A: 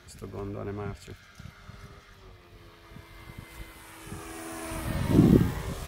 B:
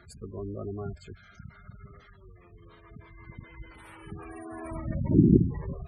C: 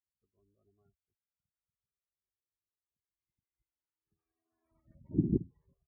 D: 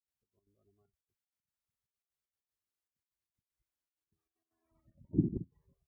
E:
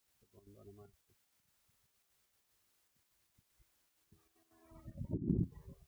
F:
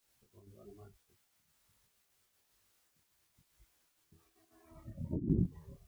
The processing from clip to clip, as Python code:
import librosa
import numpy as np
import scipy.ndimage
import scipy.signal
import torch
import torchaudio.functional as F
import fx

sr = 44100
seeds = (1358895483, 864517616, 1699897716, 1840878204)

y1 = fx.spec_gate(x, sr, threshold_db=-15, keep='strong')
y2 = fx.upward_expand(y1, sr, threshold_db=-47.0, expansion=2.5)
y2 = y2 * 10.0 ** (-8.0 / 20.0)
y3 = fx.step_gate(y2, sr, bpm=193, pattern='.xx.x.xxxxx.x', floor_db=-12.0, edge_ms=4.5)
y4 = fx.over_compress(y3, sr, threshold_db=-44.0, ratio=-1.0)
y4 = y4 * 10.0 ** (7.0 / 20.0)
y5 = fx.detune_double(y4, sr, cents=39)
y5 = y5 * 10.0 ** (6.5 / 20.0)